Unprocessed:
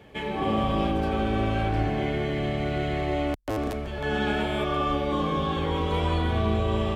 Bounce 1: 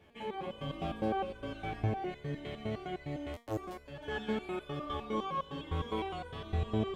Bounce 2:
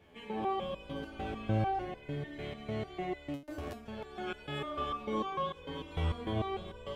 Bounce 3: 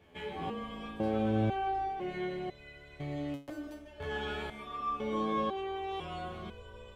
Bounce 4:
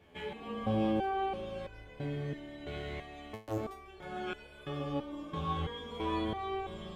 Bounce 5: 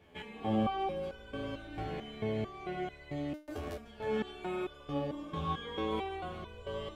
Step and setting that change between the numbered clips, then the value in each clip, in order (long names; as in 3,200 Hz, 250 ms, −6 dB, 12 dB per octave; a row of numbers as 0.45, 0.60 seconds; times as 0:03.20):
step-sequenced resonator, speed: 9.8, 6.7, 2, 3, 4.5 Hertz